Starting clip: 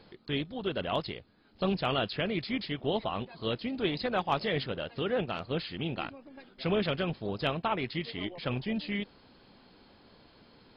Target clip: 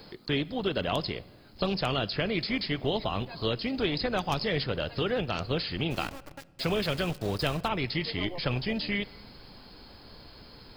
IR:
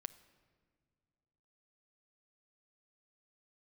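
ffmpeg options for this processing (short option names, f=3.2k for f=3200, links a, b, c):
-filter_complex "[0:a]aexciter=amount=4.8:drive=3.6:freq=4.8k,acrossover=split=360|2600[a][b][c];[a]acompressor=threshold=-37dB:ratio=4[d];[b]acompressor=threshold=-36dB:ratio=4[e];[c]acompressor=threshold=-41dB:ratio=4[f];[d][e][f]amix=inputs=3:normalize=0,asplit=3[g][h][i];[g]afade=t=out:st=5.9:d=0.02[j];[h]aeval=exprs='val(0)*gte(abs(val(0)),0.00562)':c=same,afade=t=in:st=5.9:d=0.02,afade=t=out:st=7.67:d=0.02[k];[i]afade=t=in:st=7.67:d=0.02[l];[j][k][l]amix=inputs=3:normalize=0,asplit=2[m][n];[1:a]atrim=start_sample=2205[o];[n][o]afir=irnorm=-1:irlink=0,volume=5.5dB[p];[m][p]amix=inputs=2:normalize=0,asubboost=boost=2.5:cutoff=110"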